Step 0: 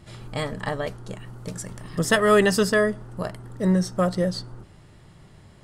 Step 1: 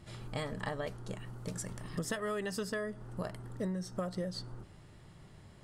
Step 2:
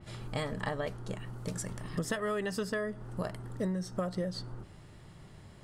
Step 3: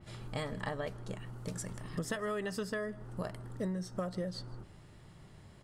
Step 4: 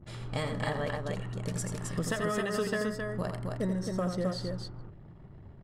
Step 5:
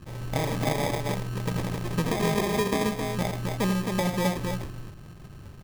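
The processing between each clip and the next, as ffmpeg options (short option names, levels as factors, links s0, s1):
-af "acompressor=threshold=0.0447:ratio=16,volume=0.531"
-af "adynamicequalizer=threshold=0.00126:dfrequency=3900:dqfactor=0.7:tfrequency=3900:tqfactor=0.7:attack=5:release=100:ratio=0.375:range=2:mode=cutabove:tftype=highshelf,volume=1.41"
-af "aecho=1:1:157:0.0668,volume=0.708"
-af "anlmdn=0.000251,aecho=1:1:84.55|265.3:0.447|0.631,volume=1.58"
-af "acrusher=samples=31:mix=1:aa=0.000001,volume=1.88"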